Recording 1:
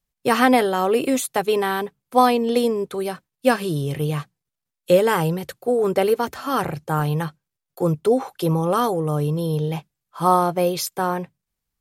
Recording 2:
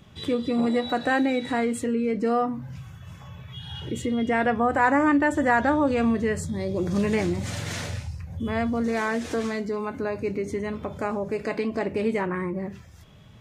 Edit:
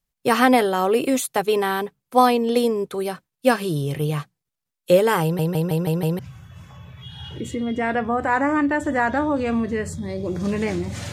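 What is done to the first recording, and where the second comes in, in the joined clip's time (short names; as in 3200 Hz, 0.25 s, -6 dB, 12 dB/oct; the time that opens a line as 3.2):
recording 1
5.23 stutter in place 0.16 s, 6 plays
6.19 switch to recording 2 from 2.7 s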